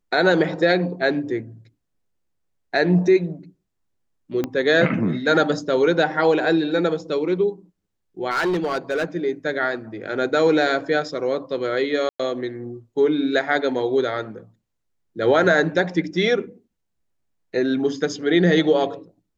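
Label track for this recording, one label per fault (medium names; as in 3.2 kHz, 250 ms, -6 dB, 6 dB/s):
4.440000	4.440000	pop -11 dBFS
8.300000	9.050000	clipped -18 dBFS
12.090000	12.200000	dropout 105 ms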